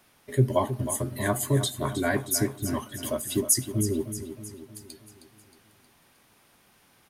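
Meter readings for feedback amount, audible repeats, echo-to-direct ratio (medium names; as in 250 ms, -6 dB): 52%, 5, -9.5 dB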